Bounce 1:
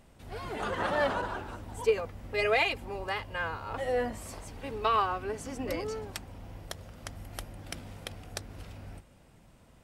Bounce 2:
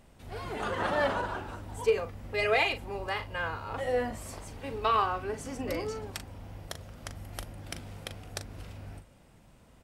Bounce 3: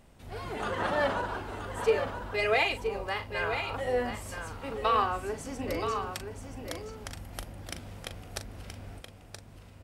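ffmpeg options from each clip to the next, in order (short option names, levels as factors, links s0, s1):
-filter_complex "[0:a]asplit=2[s0][s1];[s1]adelay=40,volume=0.299[s2];[s0][s2]amix=inputs=2:normalize=0"
-af "aecho=1:1:975:0.422"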